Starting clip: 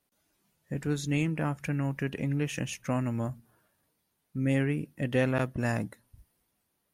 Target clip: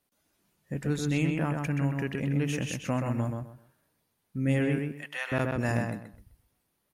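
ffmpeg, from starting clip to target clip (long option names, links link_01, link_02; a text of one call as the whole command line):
ffmpeg -i in.wav -filter_complex "[0:a]asettb=1/sr,asplit=3[link_01][link_02][link_03];[link_01]atrim=end=4.794[link_04];[link_02]atrim=start=4.79:end=5.32,asetpts=PTS-STARTPTS,afade=type=in:duration=0.004:curve=qsin,afade=type=out:start_time=0.526:duration=0.004:curve=qsin,highpass=frequency=890:width=0.5412,highpass=frequency=890:width=1.3066[link_05];[link_03]atrim=start=5.316[link_06];[link_04][link_05]acrossfade=duration=0.004:curve1=hsin:curve2=qsin[link_07];[link_07][link_06]acrossfade=duration=0.004:curve1=qsin:curve2=hsin,asplit=2[link_08][link_09];[link_09]adelay=128,lowpass=frequency=3500:poles=1,volume=-3.5dB,asplit=2[link_10][link_11];[link_11]adelay=128,lowpass=frequency=3500:poles=1,volume=0.24,asplit=2[link_12][link_13];[link_13]adelay=128,lowpass=frequency=3500:poles=1,volume=0.24[link_14];[link_08][link_10][link_12][link_14]amix=inputs=4:normalize=0" out.wav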